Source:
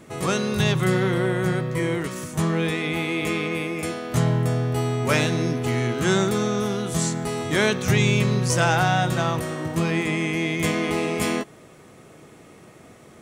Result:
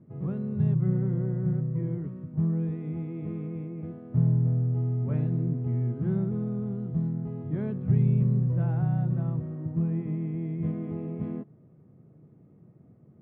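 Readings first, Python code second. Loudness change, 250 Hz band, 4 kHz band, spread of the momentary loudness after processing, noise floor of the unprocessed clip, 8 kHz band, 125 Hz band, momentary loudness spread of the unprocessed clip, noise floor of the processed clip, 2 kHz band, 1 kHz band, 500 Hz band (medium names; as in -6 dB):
-5.5 dB, -5.0 dB, under -40 dB, 10 LU, -48 dBFS, under -40 dB, -1.0 dB, 6 LU, -56 dBFS, under -30 dB, -22.0 dB, -14.5 dB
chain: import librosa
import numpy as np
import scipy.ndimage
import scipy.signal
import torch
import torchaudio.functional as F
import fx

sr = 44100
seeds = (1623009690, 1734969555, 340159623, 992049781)

y = fx.bandpass_q(x, sr, hz=140.0, q=1.7)
y = fx.air_absorb(y, sr, metres=440.0)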